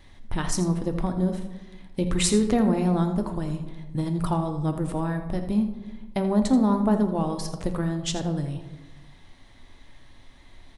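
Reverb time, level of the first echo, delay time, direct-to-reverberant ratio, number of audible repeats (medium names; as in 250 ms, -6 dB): 1.2 s, -12.0 dB, 83 ms, 5.5 dB, 1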